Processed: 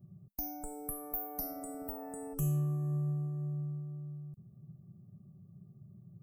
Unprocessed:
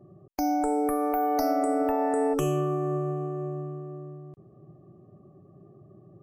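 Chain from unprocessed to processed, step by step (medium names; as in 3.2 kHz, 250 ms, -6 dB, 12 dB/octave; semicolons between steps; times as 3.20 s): FFT filter 200 Hz 0 dB, 300 Hz -20 dB, 3.6 kHz -21 dB, 15 kHz +8 dB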